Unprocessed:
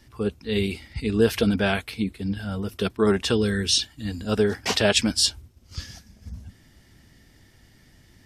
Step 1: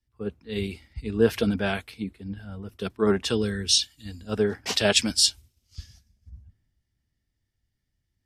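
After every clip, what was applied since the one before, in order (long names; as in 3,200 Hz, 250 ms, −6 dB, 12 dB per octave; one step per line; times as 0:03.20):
multiband upward and downward expander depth 70%
level −5 dB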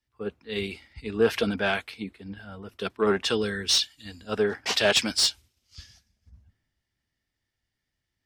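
mid-hump overdrive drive 14 dB, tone 3,800 Hz, clips at −5.5 dBFS
level −3.5 dB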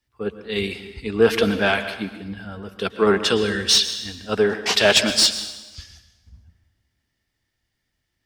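dense smooth reverb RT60 1.1 s, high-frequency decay 0.9×, pre-delay 100 ms, DRR 10.5 dB
level +6 dB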